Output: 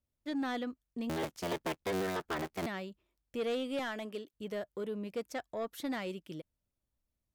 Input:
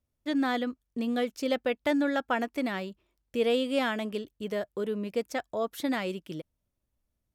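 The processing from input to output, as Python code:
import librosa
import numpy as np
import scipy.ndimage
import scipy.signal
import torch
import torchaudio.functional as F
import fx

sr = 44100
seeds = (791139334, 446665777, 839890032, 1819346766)

y = fx.cycle_switch(x, sr, every=3, mode='inverted', at=(1.09, 2.66))
y = fx.highpass(y, sr, hz=240.0, slope=12, at=(3.79, 4.34))
y = 10.0 ** (-23.0 / 20.0) * np.tanh(y / 10.0 ** (-23.0 / 20.0))
y = y * librosa.db_to_amplitude(-5.5)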